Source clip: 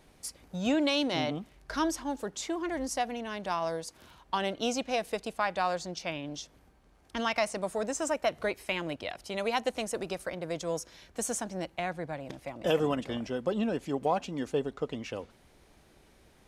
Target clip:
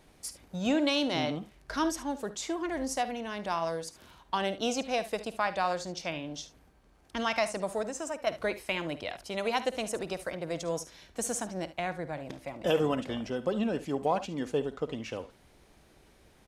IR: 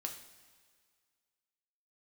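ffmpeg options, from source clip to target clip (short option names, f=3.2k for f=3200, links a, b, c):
-filter_complex "[0:a]asettb=1/sr,asplit=3[a][b][c];[a]atrim=end=7.824[d];[b]atrim=start=7.82:end=8.27,asetpts=PTS-STARTPTS,afade=t=in:d=0.004:c=qsin,afade=t=out:st=0.446:d=0.004:c=qsin,acompressor=threshold=-37dB:ratio=2[e];[c]atrim=start=8.266[f];[d][e]acrossfade=d=0.004:c1=hsin:c2=qsin[g];[g][f]acrossfade=d=0.004:c1=qsin:c2=hsin,aecho=1:1:53|72:0.158|0.158"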